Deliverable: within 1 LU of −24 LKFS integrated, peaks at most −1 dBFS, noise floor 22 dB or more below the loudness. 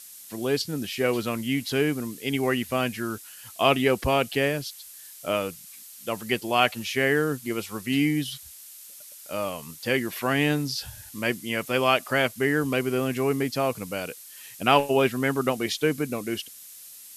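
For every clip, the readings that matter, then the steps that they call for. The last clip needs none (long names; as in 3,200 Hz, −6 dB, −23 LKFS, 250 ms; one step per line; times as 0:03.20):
background noise floor −46 dBFS; target noise floor −48 dBFS; integrated loudness −26.0 LKFS; sample peak −4.5 dBFS; target loudness −24.0 LKFS
→ broadband denoise 6 dB, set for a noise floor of −46 dBFS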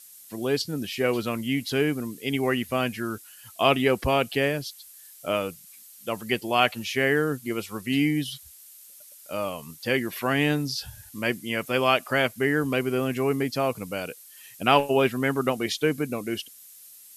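background noise floor −49 dBFS; integrated loudness −26.0 LKFS; sample peak −4.5 dBFS; target loudness −24.0 LKFS
→ level +2 dB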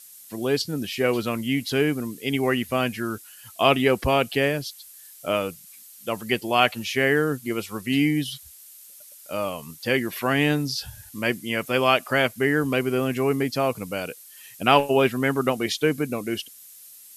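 integrated loudness −24.0 LKFS; sample peak −2.5 dBFS; background noise floor −47 dBFS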